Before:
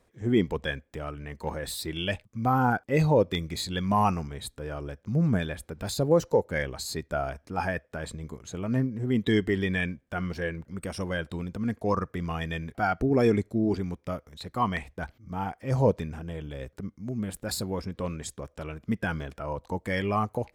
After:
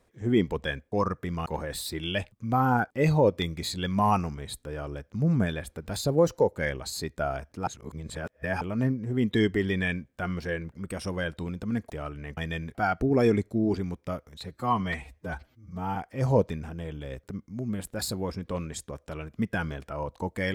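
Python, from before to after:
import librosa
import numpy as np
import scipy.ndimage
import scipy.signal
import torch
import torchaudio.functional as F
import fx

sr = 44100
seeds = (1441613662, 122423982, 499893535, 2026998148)

y = fx.edit(x, sr, fx.swap(start_s=0.92, length_s=0.47, other_s=11.83, other_length_s=0.54),
    fx.reverse_span(start_s=7.6, length_s=0.94),
    fx.stretch_span(start_s=14.44, length_s=1.01, factor=1.5), tone=tone)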